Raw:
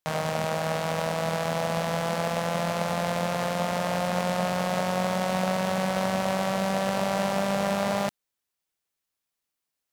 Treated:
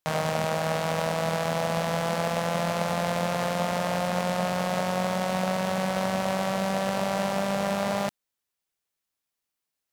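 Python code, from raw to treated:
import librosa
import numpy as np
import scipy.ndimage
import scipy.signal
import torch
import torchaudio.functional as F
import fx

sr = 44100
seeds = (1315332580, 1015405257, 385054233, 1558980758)

y = fx.rider(x, sr, range_db=10, speed_s=0.5)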